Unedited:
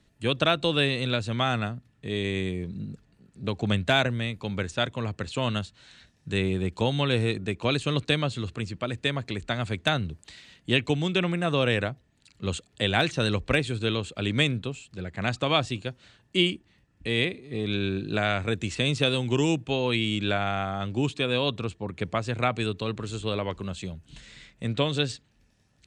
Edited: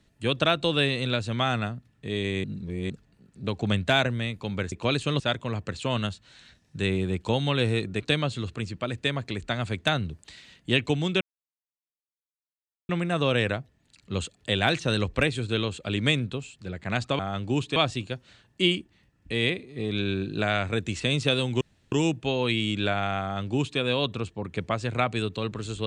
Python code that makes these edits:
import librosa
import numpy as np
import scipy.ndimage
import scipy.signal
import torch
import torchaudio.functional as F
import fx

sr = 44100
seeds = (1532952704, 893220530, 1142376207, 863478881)

y = fx.edit(x, sr, fx.reverse_span(start_s=2.44, length_s=0.46),
    fx.move(start_s=7.52, length_s=0.48, to_s=4.72),
    fx.insert_silence(at_s=11.21, length_s=1.68),
    fx.insert_room_tone(at_s=19.36, length_s=0.31),
    fx.duplicate(start_s=20.66, length_s=0.57, to_s=15.51), tone=tone)